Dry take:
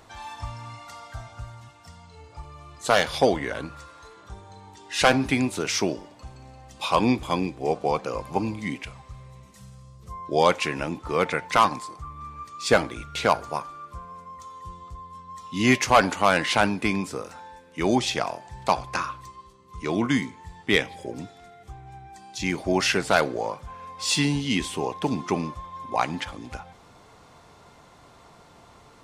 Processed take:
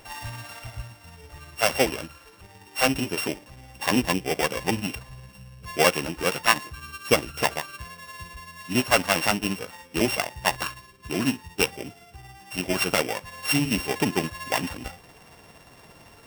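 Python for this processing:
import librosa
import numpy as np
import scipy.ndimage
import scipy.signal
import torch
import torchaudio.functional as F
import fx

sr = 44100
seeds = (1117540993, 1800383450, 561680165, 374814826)

y = np.r_[np.sort(x[:len(x) // 16 * 16].reshape(-1, 16), axis=1).ravel(), x[len(x) // 16 * 16:]]
y = fx.rider(y, sr, range_db=3, speed_s=2.0)
y = fx.stretch_grains(y, sr, factor=0.56, grain_ms=114.0)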